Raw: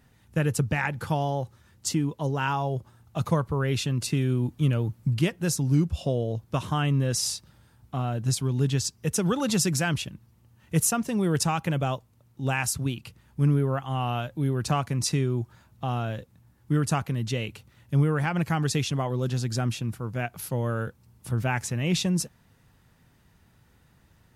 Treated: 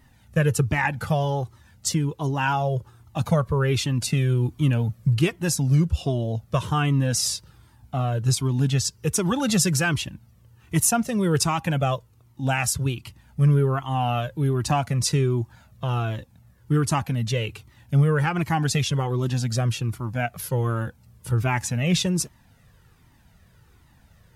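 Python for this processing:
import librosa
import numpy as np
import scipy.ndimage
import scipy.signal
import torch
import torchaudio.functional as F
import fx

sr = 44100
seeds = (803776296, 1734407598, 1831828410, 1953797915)

y = fx.comb_cascade(x, sr, direction='falling', hz=1.3)
y = y * 10.0 ** (8.0 / 20.0)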